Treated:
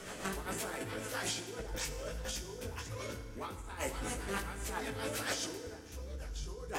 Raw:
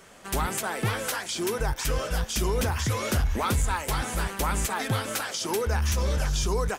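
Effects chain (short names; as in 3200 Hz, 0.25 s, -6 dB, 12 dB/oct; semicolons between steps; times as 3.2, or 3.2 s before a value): dynamic EQ 450 Hz, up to +5 dB, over -41 dBFS, Q 2.1; limiter -28 dBFS, peak gain reduction 13 dB; negative-ratio compressor -40 dBFS, ratio -0.5; rotary speaker horn 7.5 Hz; chorus 1.3 Hz, delay 15 ms, depth 6.3 ms; FDN reverb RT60 1.8 s, low-frequency decay 1.45×, high-frequency decay 0.75×, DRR 7 dB; gain +5.5 dB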